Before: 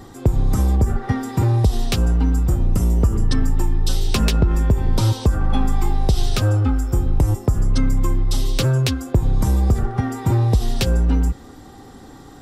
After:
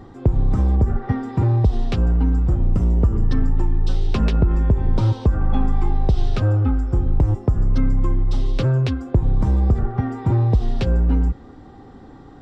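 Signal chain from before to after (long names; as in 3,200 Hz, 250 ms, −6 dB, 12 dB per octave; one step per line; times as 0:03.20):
head-to-tape spacing loss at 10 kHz 27 dB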